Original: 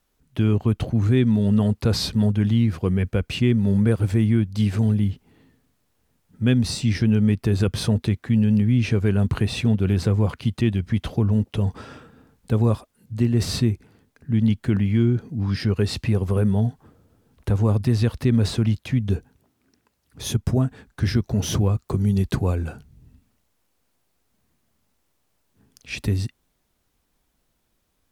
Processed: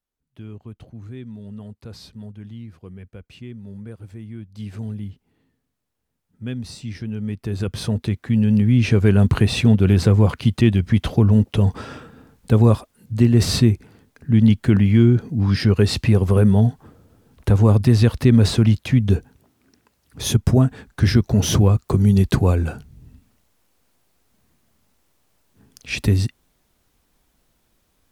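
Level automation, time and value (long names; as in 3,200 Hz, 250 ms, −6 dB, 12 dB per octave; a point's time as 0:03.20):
0:04.26 −17.5 dB
0:04.76 −10 dB
0:07.11 −10 dB
0:07.70 −3 dB
0:09.07 +5.5 dB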